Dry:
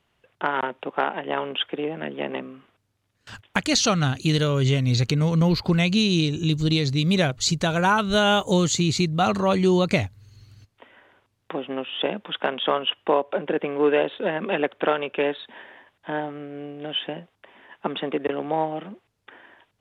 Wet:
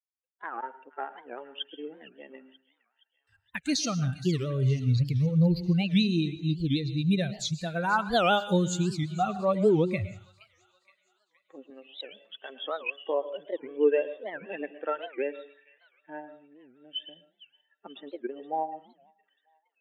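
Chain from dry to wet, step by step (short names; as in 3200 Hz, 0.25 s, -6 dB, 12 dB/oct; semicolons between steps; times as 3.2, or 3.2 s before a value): per-bin expansion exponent 2; 11.7–12.5 HPF 810 Hz 6 dB/oct; thin delay 0.47 s, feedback 50%, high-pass 1800 Hz, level -18 dB; harmonic-percussive split percussive -7 dB; on a send at -14 dB: reverb RT60 0.40 s, pre-delay 0.105 s; on the sum: record warp 78 rpm, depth 250 cents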